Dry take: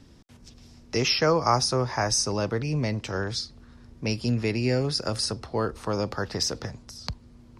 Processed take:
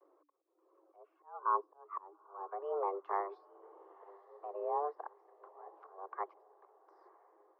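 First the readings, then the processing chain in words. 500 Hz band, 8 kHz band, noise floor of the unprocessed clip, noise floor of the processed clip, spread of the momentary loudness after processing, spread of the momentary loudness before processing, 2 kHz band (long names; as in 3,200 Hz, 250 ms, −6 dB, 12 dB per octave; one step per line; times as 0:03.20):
−14.0 dB, below −40 dB, −53 dBFS, −76 dBFS, 22 LU, 15 LU, −23.0 dB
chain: reverb reduction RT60 0.59 s
treble cut that deepens with the level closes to 760 Hz, closed at −22.5 dBFS
tape wow and flutter 130 cents
brickwall limiter −22 dBFS, peak gain reduction 10 dB
volume swells 418 ms
frequency shifter +290 Hz
low-pass with resonance 1,100 Hz, resonance Q 8
on a send: feedback delay with all-pass diffusion 935 ms, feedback 52%, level −14.5 dB
on the sum: expander for the loud parts 1.5 to 1, over −42 dBFS
level −7 dB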